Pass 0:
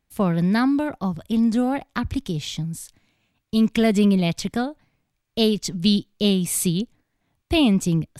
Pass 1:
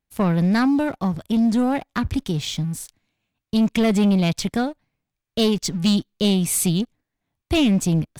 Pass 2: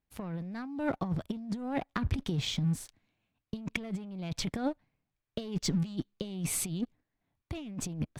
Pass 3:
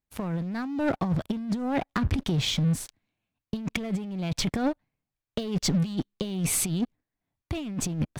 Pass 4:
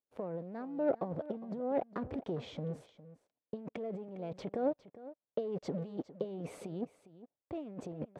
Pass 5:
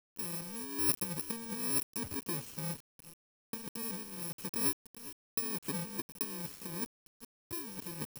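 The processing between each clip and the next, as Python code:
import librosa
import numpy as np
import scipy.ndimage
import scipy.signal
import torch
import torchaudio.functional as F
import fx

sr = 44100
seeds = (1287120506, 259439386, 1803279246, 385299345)

y1 = fx.leveller(x, sr, passes=2)
y1 = y1 * librosa.db_to_amplitude(-4.5)
y2 = fx.high_shelf(y1, sr, hz=4900.0, db=-11.5)
y2 = fx.over_compress(y2, sr, threshold_db=-24.0, ratio=-0.5)
y2 = y2 * librosa.db_to_amplitude(-8.0)
y3 = fx.leveller(y2, sr, passes=2)
y4 = fx.bandpass_q(y3, sr, hz=510.0, q=2.6)
y4 = y4 + 10.0 ** (-16.5 / 20.0) * np.pad(y4, (int(407 * sr / 1000.0), 0))[:len(y4)]
y4 = y4 * librosa.db_to_amplitude(1.0)
y5 = fx.bit_reversed(y4, sr, seeds[0], block=64)
y5 = fx.quant_dither(y5, sr, seeds[1], bits=8, dither='none')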